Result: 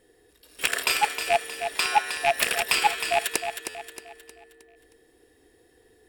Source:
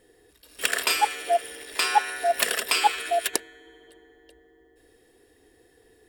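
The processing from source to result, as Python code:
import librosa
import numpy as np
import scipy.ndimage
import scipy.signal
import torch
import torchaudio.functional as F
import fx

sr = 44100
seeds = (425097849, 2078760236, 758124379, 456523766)

y = fx.rattle_buzz(x, sr, strikes_db=-45.0, level_db=-10.0)
y = fx.echo_feedback(y, sr, ms=313, feedback_pct=42, wet_db=-8.0)
y = fx.buffer_glitch(y, sr, at_s=(3.69,), block=512, repeats=4)
y = F.gain(torch.from_numpy(y), -1.5).numpy()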